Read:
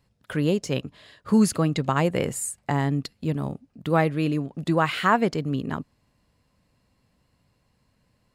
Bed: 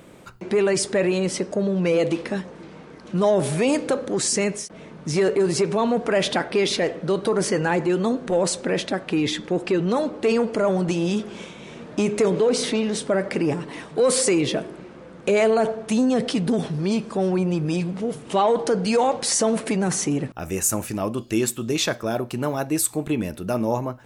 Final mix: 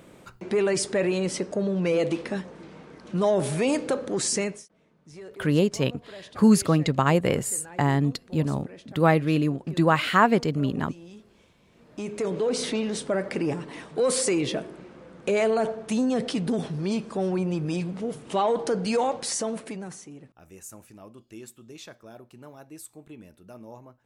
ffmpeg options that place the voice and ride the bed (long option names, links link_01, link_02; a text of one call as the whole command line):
ffmpeg -i stem1.wav -i stem2.wav -filter_complex "[0:a]adelay=5100,volume=1.5dB[link_01];[1:a]volume=15dB,afade=type=out:start_time=4.37:duration=0.31:silence=0.105925,afade=type=in:start_time=11.71:duration=0.93:silence=0.11885,afade=type=out:start_time=18.98:duration=1.05:silence=0.149624[link_02];[link_01][link_02]amix=inputs=2:normalize=0" out.wav